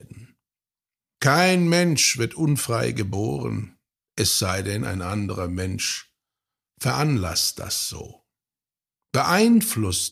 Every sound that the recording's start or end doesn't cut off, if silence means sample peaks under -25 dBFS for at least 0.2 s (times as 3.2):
1.22–3.64
4.18–5.97
6.82–8.01